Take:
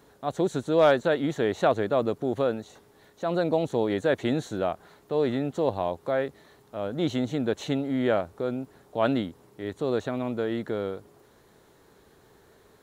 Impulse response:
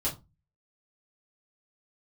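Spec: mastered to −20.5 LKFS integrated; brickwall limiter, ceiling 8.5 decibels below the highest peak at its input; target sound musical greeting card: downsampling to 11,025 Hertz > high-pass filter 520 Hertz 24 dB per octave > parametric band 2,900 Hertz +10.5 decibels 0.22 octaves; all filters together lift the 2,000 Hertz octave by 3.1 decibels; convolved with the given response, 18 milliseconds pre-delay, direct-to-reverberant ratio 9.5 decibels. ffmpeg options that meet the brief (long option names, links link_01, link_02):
-filter_complex "[0:a]equalizer=frequency=2000:width_type=o:gain=3.5,alimiter=limit=-17dB:level=0:latency=1,asplit=2[link_01][link_02];[1:a]atrim=start_sample=2205,adelay=18[link_03];[link_02][link_03]afir=irnorm=-1:irlink=0,volume=-15dB[link_04];[link_01][link_04]amix=inputs=2:normalize=0,aresample=11025,aresample=44100,highpass=frequency=520:width=0.5412,highpass=frequency=520:width=1.3066,equalizer=frequency=2900:width_type=o:width=0.22:gain=10.5,volume=12.5dB"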